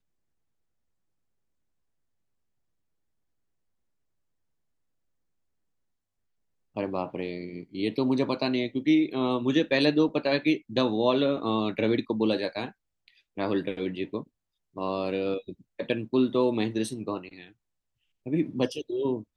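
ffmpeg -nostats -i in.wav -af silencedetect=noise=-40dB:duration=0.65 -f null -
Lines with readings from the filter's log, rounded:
silence_start: 0.00
silence_end: 6.76 | silence_duration: 6.76
silence_start: 17.47
silence_end: 18.26 | silence_duration: 0.79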